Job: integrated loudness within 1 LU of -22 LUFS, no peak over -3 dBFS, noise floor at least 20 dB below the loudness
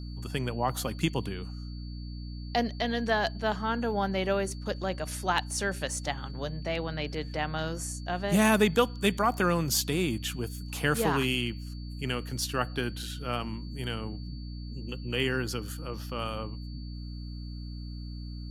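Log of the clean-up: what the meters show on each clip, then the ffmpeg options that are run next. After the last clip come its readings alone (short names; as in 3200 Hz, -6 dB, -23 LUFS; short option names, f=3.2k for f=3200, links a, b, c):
hum 60 Hz; harmonics up to 300 Hz; hum level -36 dBFS; steady tone 4500 Hz; tone level -52 dBFS; loudness -30.5 LUFS; peak -10.0 dBFS; loudness target -22.0 LUFS
-> -af "bandreject=f=60:t=h:w=4,bandreject=f=120:t=h:w=4,bandreject=f=180:t=h:w=4,bandreject=f=240:t=h:w=4,bandreject=f=300:t=h:w=4"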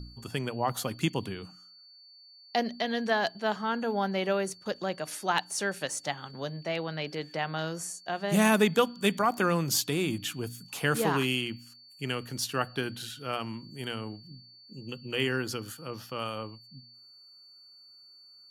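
hum none; steady tone 4500 Hz; tone level -52 dBFS
-> -af "bandreject=f=4.5k:w=30"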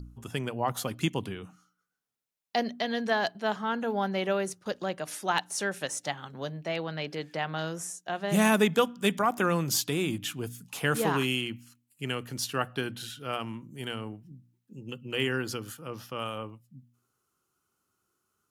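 steady tone none; loudness -30.5 LUFS; peak -10.0 dBFS; loudness target -22.0 LUFS
-> -af "volume=8.5dB,alimiter=limit=-3dB:level=0:latency=1"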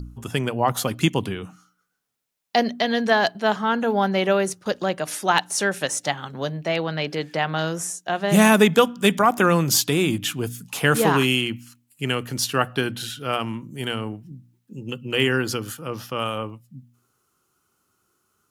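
loudness -22.0 LUFS; peak -3.0 dBFS; noise floor -71 dBFS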